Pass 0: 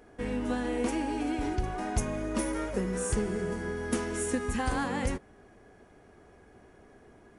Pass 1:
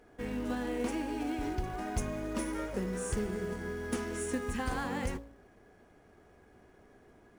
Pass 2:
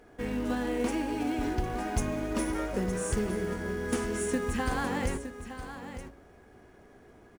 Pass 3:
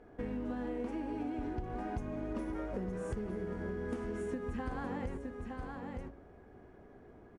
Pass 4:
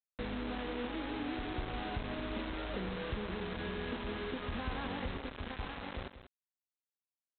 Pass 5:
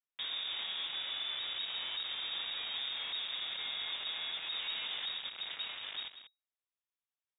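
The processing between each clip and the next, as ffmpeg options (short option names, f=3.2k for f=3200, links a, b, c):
-filter_complex "[0:a]highshelf=f=9.4k:g=-5.5,bandreject=f=55.52:t=h:w=4,bandreject=f=111.04:t=h:w=4,bandreject=f=166.56:t=h:w=4,bandreject=f=222.08:t=h:w=4,bandreject=f=277.6:t=h:w=4,bandreject=f=333.12:t=h:w=4,bandreject=f=388.64:t=h:w=4,bandreject=f=444.16:t=h:w=4,bandreject=f=499.68:t=h:w=4,bandreject=f=555.2:t=h:w=4,bandreject=f=610.72:t=h:w=4,bandreject=f=666.24:t=h:w=4,bandreject=f=721.76:t=h:w=4,bandreject=f=777.28:t=h:w=4,bandreject=f=832.8:t=h:w=4,bandreject=f=888.32:t=h:w=4,bandreject=f=943.84:t=h:w=4,bandreject=f=999.36:t=h:w=4,bandreject=f=1.05488k:t=h:w=4,bandreject=f=1.1104k:t=h:w=4,bandreject=f=1.16592k:t=h:w=4,asplit=2[a][b];[b]acrusher=bits=3:mode=log:mix=0:aa=0.000001,volume=-6dB[c];[a][c]amix=inputs=2:normalize=0,volume=-7dB"
-af "aecho=1:1:915:0.282,volume=4dB"
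-af "lowpass=f=1k:p=1,acompressor=threshold=-35dB:ratio=6"
-af "equalizer=f=300:w=0.41:g=-3.5,aresample=8000,acrusher=bits=6:mix=0:aa=0.000001,aresample=44100,aecho=1:1:189:0.251,volume=1dB"
-af "aresample=11025,volume=34.5dB,asoftclip=hard,volume=-34.5dB,aresample=44100,lowpass=f=3.2k:t=q:w=0.5098,lowpass=f=3.2k:t=q:w=0.6013,lowpass=f=3.2k:t=q:w=0.9,lowpass=f=3.2k:t=q:w=2.563,afreqshift=-3800"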